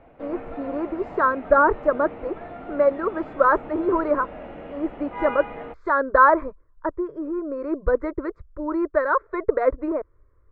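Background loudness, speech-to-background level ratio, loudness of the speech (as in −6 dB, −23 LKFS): −37.5 LKFS, 14.5 dB, −23.0 LKFS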